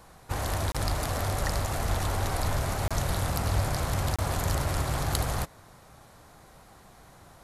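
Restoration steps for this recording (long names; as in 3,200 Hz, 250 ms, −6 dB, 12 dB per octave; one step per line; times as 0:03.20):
clipped peaks rebuilt −12 dBFS
repair the gap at 0:00.72/0:02.88/0:04.16, 26 ms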